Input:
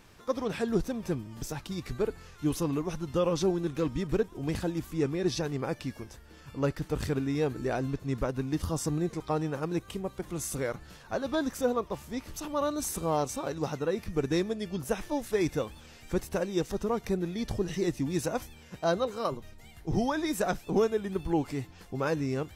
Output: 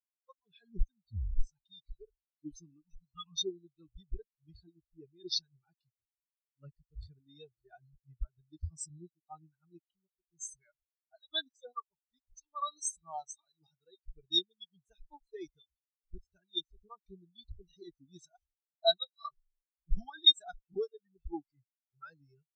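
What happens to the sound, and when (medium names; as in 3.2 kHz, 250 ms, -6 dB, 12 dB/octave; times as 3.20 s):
0.96 s: tape stop 0.47 s
2.84–3.44 s: spectral selection erased 230–770 Hz
9.87–10.53 s: fade in logarithmic
whole clip: spectral noise reduction 18 dB; ten-band graphic EQ 125 Hz -7 dB, 250 Hz -9 dB, 500 Hz -11 dB, 4 kHz +12 dB, 8 kHz +8 dB; spectral contrast expander 4:1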